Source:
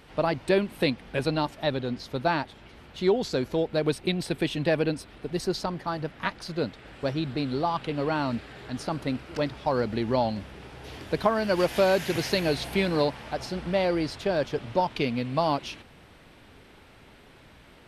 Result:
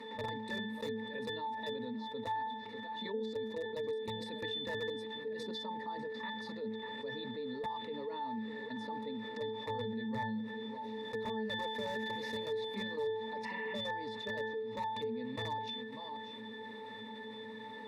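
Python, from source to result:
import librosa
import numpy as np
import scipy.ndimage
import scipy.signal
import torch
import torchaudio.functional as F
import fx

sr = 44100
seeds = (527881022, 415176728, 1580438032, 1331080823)

p1 = x + fx.echo_single(x, sr, ms=596, db=-19.0, dry=0)
p2 = fx.level_steps(p1, sr, step_db=12)
p3 = scipy.signal.sosfilt(scipy.signal.butter(4, 190.0, 'highpass', fs=sr, output='sos'), p2)
p4 = fx.tilt_eq(p3, sr, slope=2.0)
p5 = fx.spec_repair(p4, sr, seeds[0], start_s=13.47, length_s=0.26, low_hz=750.0, high_hz=3200.0, source='after')
p6 = (np.mod(10.0 ** (19.0 / 20.0) * p5 + 1.0, 2.0) - 1.0) / 10.0 ** (19.0 / 20.0)
p7 = fx.high_shelf(p6, sr, hz=7800.0, db=7.5)
p8 = fx.octave_resonator(p7, sr, note='A', decay_s=0.37)
p9 = fx.env_flatten(p8, sr, amount_pct=70)
y = p9 * librosa.db_to_amplitude(3.5)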